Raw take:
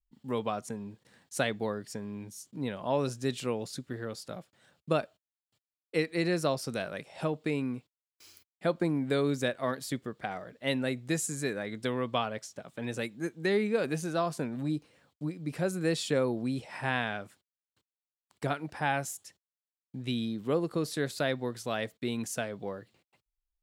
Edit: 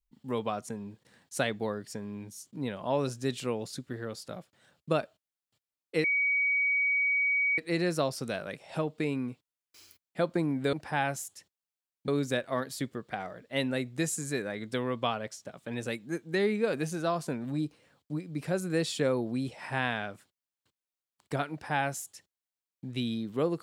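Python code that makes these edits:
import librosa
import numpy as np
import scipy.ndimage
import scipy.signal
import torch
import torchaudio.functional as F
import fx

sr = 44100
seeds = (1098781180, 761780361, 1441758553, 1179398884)

y = fx.edit(x, sr, fx.insert_tone(at_s=6.04, length_s=1.54, hz=2260.0, db=-24.0),
    fx.duplicate(start_s=18.62, length_s=1.35, to_s=9.19), tone=tone)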